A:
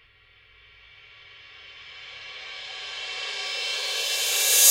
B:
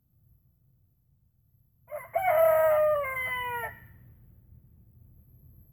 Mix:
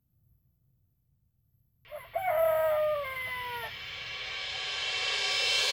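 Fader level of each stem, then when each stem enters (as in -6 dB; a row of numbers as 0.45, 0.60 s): +1.5, -4.5 dB; 1.85, 0.00 s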